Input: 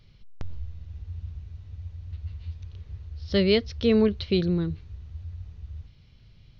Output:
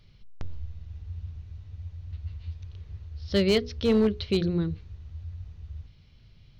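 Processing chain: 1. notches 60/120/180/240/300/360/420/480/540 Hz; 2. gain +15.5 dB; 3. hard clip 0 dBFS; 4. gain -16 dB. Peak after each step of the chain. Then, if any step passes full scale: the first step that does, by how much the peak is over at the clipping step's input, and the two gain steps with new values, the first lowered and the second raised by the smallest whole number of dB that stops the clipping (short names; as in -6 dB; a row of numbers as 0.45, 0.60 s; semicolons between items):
-9.5, +6.0, 0.0, -16.0 dBFS; step 2, 6.0 dB; step 2 +9.5 dB, step 4 -10 dB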